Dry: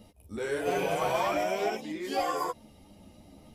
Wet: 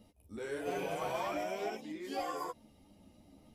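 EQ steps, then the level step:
parametric band 270 Hz +3.5 dB 0.55 octaves
−8.5 dB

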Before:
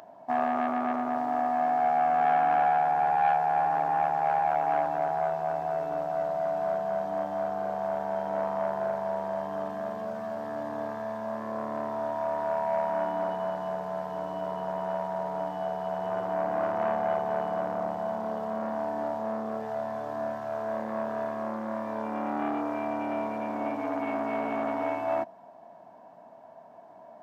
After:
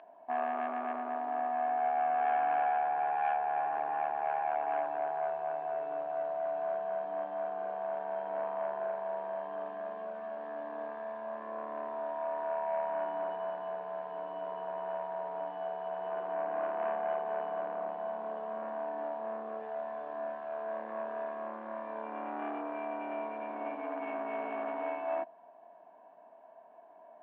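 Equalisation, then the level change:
loudspeaker in its box 500–2,600 Hz, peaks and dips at 550 Hz −6 dB, 840 Hz −7 dB, 1,300 Hz −9 dB, 2,000 Hz −7 dB
0.0 dB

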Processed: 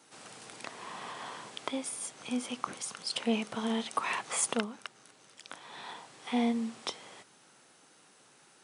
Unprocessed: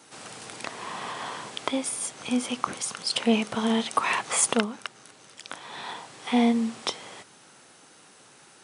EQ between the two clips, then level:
high-pass filter 100 Hz
−7.5 dB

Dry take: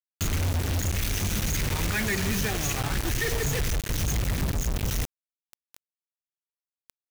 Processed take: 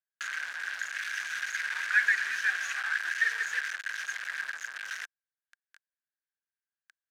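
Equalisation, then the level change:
high-pass with resonance 1,600 Hz, resonance Q 12
high-frequency loss of the air 66 metres
−7.0 dB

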